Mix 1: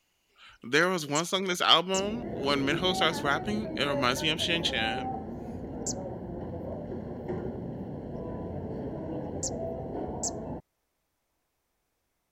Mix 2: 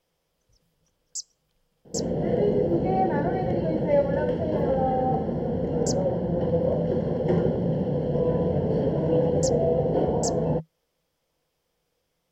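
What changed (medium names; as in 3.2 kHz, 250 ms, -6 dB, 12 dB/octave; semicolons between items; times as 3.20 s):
speech: muted; second sound +7.5 dB; master: add graphic EQ with 31 bands 160 Hz +11 dB, 500 Hz +12 dB, 3.15 kHz +8 dB, 5 kHz +7 dB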